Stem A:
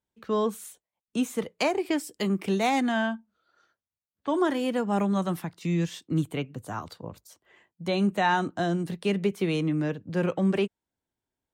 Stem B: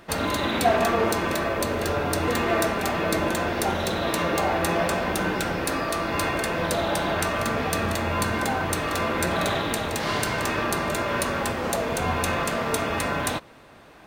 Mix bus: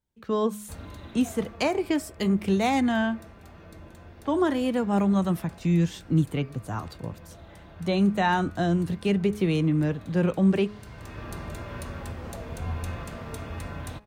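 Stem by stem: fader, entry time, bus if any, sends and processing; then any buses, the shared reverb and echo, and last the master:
-0.5 dB, 0.00 s, no send, none
-15.5 dB, 0.60 s, no send, peaking EQ 62 Hz +8 dB 2.4 oct; auto duck -12 dB, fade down 1.65 s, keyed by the first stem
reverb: none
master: bass shelf 150 Hz +12 dB; de-hum 209.1 Hz, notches 12

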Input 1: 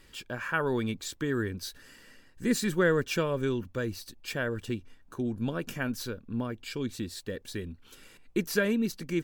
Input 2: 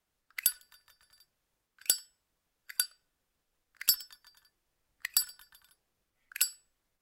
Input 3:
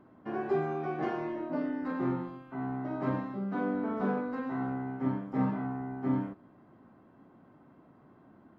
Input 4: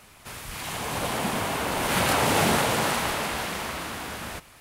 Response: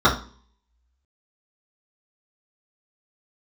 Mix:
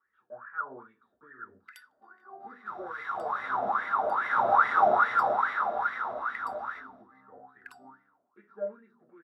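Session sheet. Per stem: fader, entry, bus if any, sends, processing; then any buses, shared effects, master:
-13.5 dB, 0.00 s, send -7 dB, low-pass 1.5 kHz 12 dB/octave
+2.0 dB, 1.30 s, send -24 dB, none
-19.0 dB, 1.75 s, send -8.5 dB, none
-8.0 dB, 2.40 s, send -4 dB, none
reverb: on, RT60 0.40 s, pre-delay 3 ms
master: wah-wah 2.4 Hz 630–2000 Hz, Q 9.9

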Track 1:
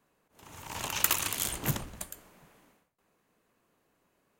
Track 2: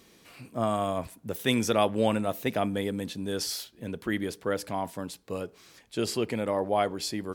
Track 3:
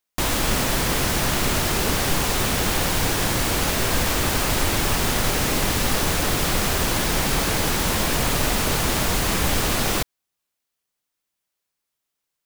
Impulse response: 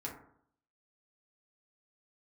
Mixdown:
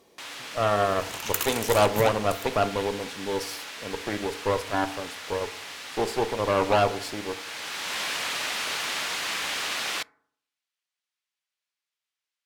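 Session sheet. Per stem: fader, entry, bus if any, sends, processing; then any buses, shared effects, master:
-2.0 dB, 0.30 s, no send, none
-7.0 dB, 0.00 s, send -7.5 dB, high-order bell 630 Hz +9 dB; Chebyshev shaper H 8 -14 dB, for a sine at -4 dBFS
-2.0 dB, 0.00 s, send -18 dB, band-pass filter 2.7 kHz, Q 0.75; auto duck -11 dB, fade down 0.20 s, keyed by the second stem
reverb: on, RT60 0.65 s, pre-delay 4 ms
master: bass shelf 92 Hz -7 dB

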